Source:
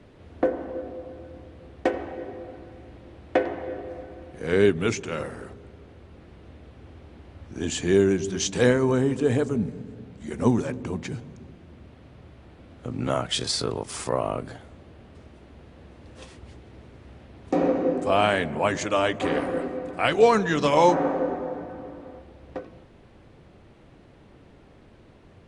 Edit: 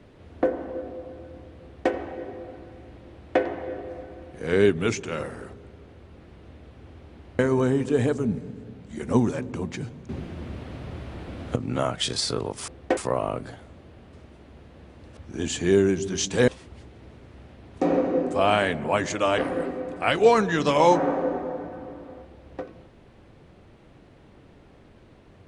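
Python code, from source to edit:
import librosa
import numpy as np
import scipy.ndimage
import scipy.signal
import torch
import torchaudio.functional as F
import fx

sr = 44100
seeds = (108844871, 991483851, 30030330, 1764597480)

y = fx.edit(x, sr, fx.duplicate(start_s=1.63, length_s=0.29, to_s=13.99),
    fx.move(start_s=7.39, length_s=1.31, to_s=16.19),
    fx.clip_gain(start_s=11.4, length_s=1.47, db=11.5),
    fx.cut(start_s=19.09, length_s=0.26), tone=tone)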